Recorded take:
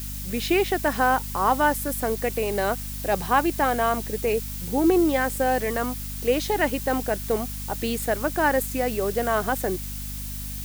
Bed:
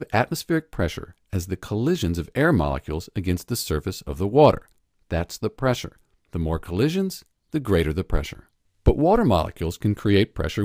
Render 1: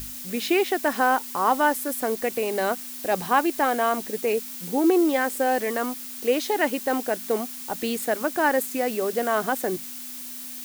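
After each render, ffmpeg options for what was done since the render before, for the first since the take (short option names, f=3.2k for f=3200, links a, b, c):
-af "bandreject=f=50:t=h:w=6,bandreject=f=100:t=h:w=6,bandreject=f=150:t=h:w=6,bandreject=f=200:t=h:w=6"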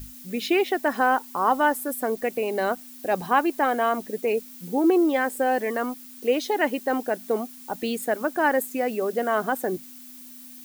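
-af "afftdn=nr=10:nf=-37"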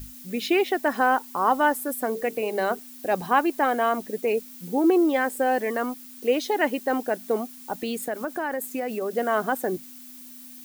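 -filter_complex "[0:a]asettb=1/sr,asplit=3[a][b][c];[a]atrim=end=2.054[d];[b]atrim=start=2.05:end=2.79,asetpts=PTS-STARTPTS,afade=t=in:d=0.004:c=qsin,afade=t=out:st=0.736:d=0.004:c=qsin,bandreject=f=50:t=h:w=6,bandreject=f=100:t=h:w=6,bandreject=f=150:t=h:w=6,bandreject=f=200:t=h:w=6,bandreject=f=250:t=h:w=6,bandreject=f=300:t=h:w=6,bandreject=f=350:t=h:w=6,bandreject=f=400:t=h:w=6,bandreject=f=450:t=h:w=6[e];[c]atrim=start=2.786[f];[d][e]acrossfade=d=0.004:c1=hsin:c2=qsin[g];[g][f]acrossfade=d=0.004:c1=qsin:c2=hsin,asettb=1/sr,asplit=3[h][i][j];[h]atrim=end=7.774[k];[i]atrim=start=7.77:end=9.13,asetpts=PTS-STARTPTS,afade=t=in:d=0.004:c=qsin,afade=t=out:st=1.356:d=0.004:c=qsin,acompressor=threshold=-24dB:ratio=6:attack=3.2:release=140:knee=1:detection=peak[l];[j]atrim=start=9.126[m];[k][l]acrossfade=d=0.004:c1=hsin:c2=qsin[n];[n][m]acrossfade=d=0.004:c1=qsin:c2=hsin"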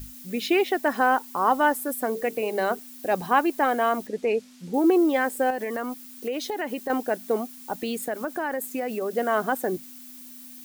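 -filter_complex "[0:a]asettb=1/sr,asplit=3[a][b][c];[a]atrim=end=4.074[d];[b]atrim=start=4.07:end=4.74,asetpts=PTS-STARTPTS,afade=t=in:d=0.004:c=qsin,afade=t=out:st=0.666:d=0.004:c=qsin,lowpass=6.2k[e];[c]atrim=start=4.736[f];[d][e]acrossfade=d=0.004:c1=hsin:c2=qsin[g];[g][f]acrossfade=d=0.004:c1=qsin:c2=hsin,asettb=1/sr,asplit=3[h][i][j];[h]atrim=end=5.504[k];[i]atrim=start=5.5:end=6.9,asetpts=PTS-STARTPTS,afade=t=in:d=0.004:c=qsin,afade=t=out:st=1.396:d=0.004:c=qsin,acompressor=threshold=-25dB:ratio=6:attack=3.2:release=140:knee=1:detection=peak[l];[j]atrim=start=6.896[m];[k][l]acrossfade=d=0.004:c1=hsin:c2=qsin[n];[n][m]acrossfade=d=0.004:c1=qsin:c2=hsin"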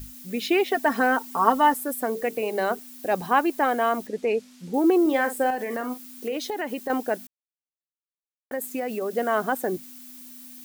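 -filter_complex "[0:a]asettb=1/sr,asplit=3[a][b][c];[a]atrim=end=0.714[d];[b]atrim=start=0.71:end=1.74,asetpts=PTS-STARTPTS,afade=t=in:d=0.004:c=qsin,afade=t=out:st=1.026:d=0.004:c=qsin,aecho=1:1:4.4:0.77,atrim=end_sample=45423[e];[c]atrim=start=1.736[f];[d][e]acrossfade=d=0.004:c1=hsin:c2=qsin[g];[g][f]acrossfade=d=0.004:c1=qsin:c2=hsin,asettb=1/sr,asplit=3[h][i][j];[h]atrim=end=5.014[k];[i]atrim=start=5.01:end=6.37,asetpts=PTS-STARTPTS,afade=t=in:d=0.004:c=qsin,afade=t=out:st=1.356:d=0.004:c=qsin,asplit=2[l][m];[m]adelay=44,volume=-10dB[n];[l][n]amix=inputs=2:normalize=0,atrim=end_sample=59976[o];[j]atrim=start=6.366[p];[k][o]acrossfade=d=0.004:c1=hsin:c2=qsin[q];[q][p]acrossfade=d=0.004:c1=qsin:c2=hsin,asplit=3[r][s][t];[r]atrim=end=7.27,asetpts=PTS-STARTPTS,afade=t=out:st=7.266:d=0.004:c=hsin[u];[s]atrim=start=7.27:end=8.51,asetpts=PTS-STARTPTS,volume=0[v];[t]atrim=start=8.51,asetpts=PTS-STARTPTS,afade=t=in:d=0.004:c=hsin[w];[u][v][w]concat=n=3:v=0:a=1"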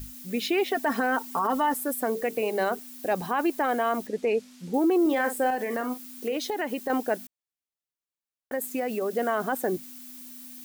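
-af "alimiter=limit=-16.5dB:level=0:latency=1:release=22"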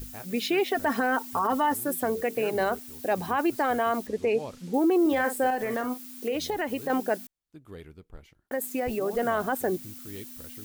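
-filter_complex "[1:a]volume=-24dB[a];[0:a][a]amix=inputs=2:normalize=0"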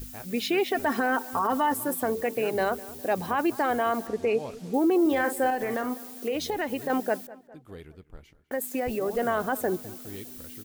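-filter_complex "[0:a]asplit=2[a][b];[b]adelay=204,lowpass=f=2.9k:p=1,volume=-19dB,asplit=2[c][d];[d]adelay=204,lowpass=f=2.9k:p=1,volume=0.5,asplit=2[e][f];[f]adelay=204,lowpass=f=2.9k:p=1,volume=0.5,asplit=2[g][h];[h]adelay=204,lowpass=f=2.9k:p=1,volume=0.5[i];[a][c][e][g][i]amix=inputs=5:normalize=0"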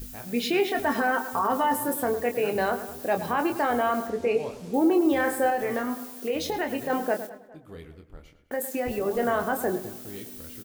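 -filter_complex "[0:a]asplit=2[a][b];[b]adelay=25,volume=-7dB[c];[a][c]amix=inputs=2:normalize=0,asplit=2[d][e];[e]adelay=107,lowpass=f=3.4k:p=1,volume=-12dB,asplit=2[f][g];[g]adelay=107,lowpass=f=3.4k:p=1,volume=0.36,asplit=2[h][i];[i]adelay=107,lowpass=f=3.4k:p=1,volume=0.36,asplit=2[j][k];[k]adelay=107,lowpass=f=3.4k:p=1,volume=0.36[l];[d][f][h][j][l]amix=inputs=5:normalize=0"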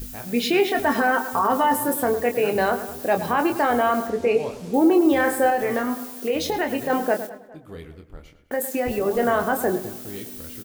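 -af "volume=4.5dB"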